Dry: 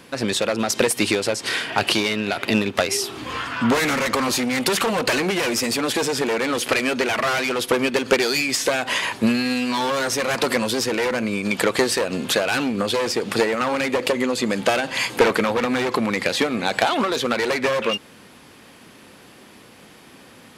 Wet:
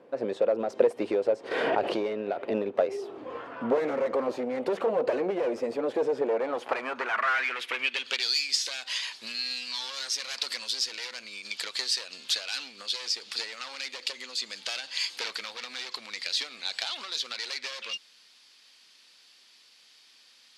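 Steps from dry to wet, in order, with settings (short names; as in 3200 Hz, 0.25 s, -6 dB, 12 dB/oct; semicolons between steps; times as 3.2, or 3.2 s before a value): band-pass sweep 520 Hz -> 4600 Hz, 6.24–8.37; 1.51–2.14 backwards sustainer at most 21 dB/s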